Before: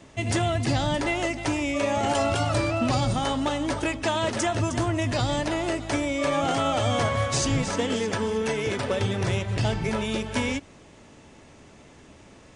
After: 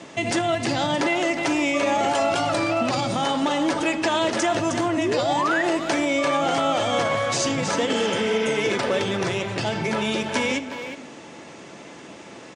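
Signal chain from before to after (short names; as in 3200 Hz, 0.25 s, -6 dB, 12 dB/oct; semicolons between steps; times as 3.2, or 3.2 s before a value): spectral repair 7.96–8.52, 620–6200 Hz both; LPF 8100 Hz 12 dB/oct; painted sound rise, 4.97–5.63, 270–2000 Hz -25 dBFS; on a send at -11 dB: reverb RT60 0.85 s, pre-delay 6 ms; on the sum: limiter -19 dBFS, peak gain reduction 7.5 dB; speakerphone echo 0.36 s, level -11 dB; in parallel at +1 dB: compressor, threshold -35 dBFS, peak gain reduction 11 dB; on the sum: HPF 210 Hz 12 dB/oct; gain +3.5 dB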